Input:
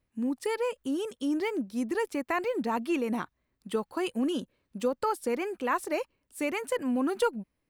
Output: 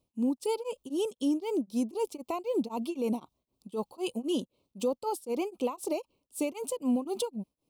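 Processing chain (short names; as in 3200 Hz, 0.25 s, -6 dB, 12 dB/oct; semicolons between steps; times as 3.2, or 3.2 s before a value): limiter -24 dBFS, peak gain reduction 9 dB; Butterworth band-stop 1700 Hz, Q 0.93; low shelf 89 Hz -10.5 dB; beating tremolo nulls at 3.9 Hz; gain +4.5 dB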